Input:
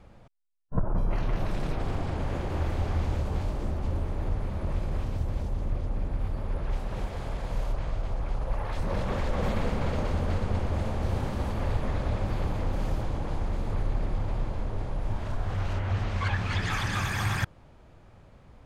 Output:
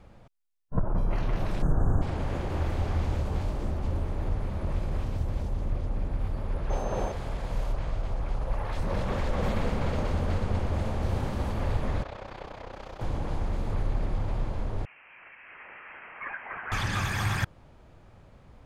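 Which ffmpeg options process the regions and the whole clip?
-filter_complex "[0:a]asettb=1/sr,asplit=3[a][b][c];[a]atrim=end=1.624[d];[b]atrim=start=1.62:end=2.02,asetpts=PTS-STARTPTS,afade=t=in:d=0.004:c=qsin,afade=t=out:st=0.396:d=0.004:c=qsin,asuperstop=centerf=3300:order=20:qfactor=0.74,bass=f=250:g=7,treble=f=4k:g=-3[e];[c]atrim=start=2.016[f];[d][e]acrossfade=d=0.004:c1=hsin:c2=qsin[g];[g][f]acrossfade=d=0.004:c1=qsin:c2=hsin,asettb=1/sr,asplit=3[h][i][j];[h]atrim=end=6.704[k];[i]atrim=start=6.7:end=7.12,asetpts=PTS-STARTPTS,afade=t=in:d=0.004:c=qsin,afade=t=out:st=0.416:d=0.004:c=qsin,equalizer=f=580:t=o:w=2.1:g=10.5,bandreject=f=2.1k:w=18,aeval=exprs='val(0)+0.00224*sin(2*PI*6300*n/s)':c=same[l];[j]atrim=start=7.116[m];[k][l]acrossfade=d=0.004:c1=hsin:c2=qsin[n];[n][m]acrossfade=d=0.004:c1=qsin:c2=hsin,asettb=1/sr,asplit=3[o][p][q];[o]atrim=end=12.034[r];[p]atrim=start=12.03:end=13.01,asetpts=PTS-STARTPTS,afade=t=in:d=0.004:c=qsin,afade=t=out:st=0.976:d=0.004:c=qsin,acrossover=split=380 6200:gain=0.178 1 0.178[s][t][u];[s][t][u]amix=inputs=3:normalize=0,tremolo=f=31:d=0.788[v];[q]atrim=start=13.006[w];[r][v]acrossfade=d=0.004:c1=hsin:c2=qsin[x];[x][w]acrossfade=d=0.004:c1=qsin:c2=hsin,asettb=1/sr,asplit=3[y][z][aa];[y]atrim=end=14.854[ab];[z]atrim=start=14.85:end=16.72,asetpts=PTS-STARTPTS,afade=t=in:d=0.004:c=qsin,afade=t=out:st=1.866:d=0.004:c=qsin,highpass=1.5k,lowpass=f=2.8k:t=q:w=0.5098,lowpass=f=2.8k:t=q:w=0.6013,lowpass=f=2.8k:t=q:w=0.9,lowpass=f=2.8k:t=q:w=2.563,afreqshift=-3300[ac];[aa]atrim=start=16.716[ad];[ab][ac]acrossfade=d=0.004:c1=hsin:c2=qsin[ae];[ae][ad]acrossfade=d=0.004:c1=qsin:c2=hsin"

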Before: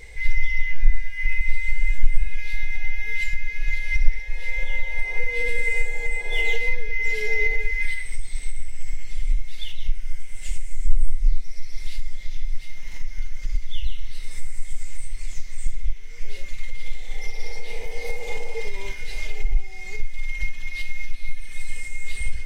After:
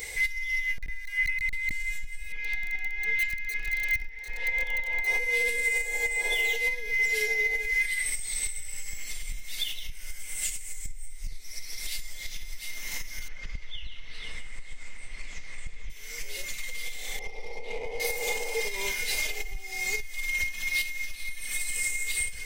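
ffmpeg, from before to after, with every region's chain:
-filter_complex "[0:a]asettb=1/sr,asplit=3[a][b][c];[a]atrim=end=0.784[d];[b]atrim=start=0.78:end=1.71,asetpts=PTS-STARTPTS,afade=t=in:d=0.004:c=qsin,afade=t=out:st=0.926:d=0.004:c=qsin,acrossover=split=3000[e][f];[f]acompressor=threshold=-54dB:ratio=4:attack=1:release=60[g];[e][g]amix=inputs=2:normalize=0,equalizer=f=170:w=0.62:g=-8.5,aeval=exprs='clip(val(0),-1,0.2)':c=same[h];[c]atrim=start=1.706[i];[d][h]acrossfade=d=0.004:c1=hsin:c2=qsin[j];[j][i]acrossfade=d=0.004:c1=qsin:c2=hsin,asettb=1/sr,asplit=3[k][l][m];[k]atrim=end=2.324[n];[l]atrim=start=2.32:end=5.07,asetpts=PTS-STARTPTS,afade=t=in:d=0.004:c=qsin,afade=t=out:st=2.746:d=0.004:c=qsin,lowpass=2.4k,aeval=exprs='sgn(val(0))*max(abs(val(0))-0.00531,0)':c=same,bandreject=f=590:w=6[o];[m]atrim=start=5.066[p];[n][o]acrossfade=d=0.004:c1=hsin:c2=qsin[q];[q][p]acrossfade=d=0.004:c1=qsin:c2=hsin,asettb=1/sr,asplit=3[r][s][t];[r]atrim=end=13.284[u];[s]atrim=start=13.28:end=15.9,asetpts=PTS-STARTPTS,afade=t=in:d=0.004:c=qsin,afade=t=out:st=2.616:d=0.004:c=qsin,lowpass=2.6k,aecho=1:1:488:0.316,atrim=end_sample=115542[v];[t]atrim=start=15.896[w];[u][v]acrossfade=d=0.004:c1=hsin:c2=qsin[x];[x][w]acrossfade=d=0.004:c1=qsin:c2=hsin,asettb=1/sr,asplit=3[y][z][aa];[y]atrim=end=17.194[ab];[z]atrim=start=17.19:end=18,asetpts=PTS-STARTPTS,afade=t=in:d=0.004:c=qsin,afade=t=out:st=0.806:d=0.004:c=qsin,asuperstop=centerf=1500:order=4:qfactor=1.7,adynamicsmooth=sensitivity=2:basefreq=1.5k[ac];[aa]atrim=start=17.996[ad];[ab][ac]acrossfade=d=0.004:c1=hsin:c2=qsin[ae];[ae][ad]acrossfade=d=0.004:c1=qsin:c2=hsin,acompressor=threshold=-19dB:ratio=12,aemphasis=mode=production:type=bsi,alimiter=limit=-24dB:level=0:latency=1:release=363,volume=6dB"

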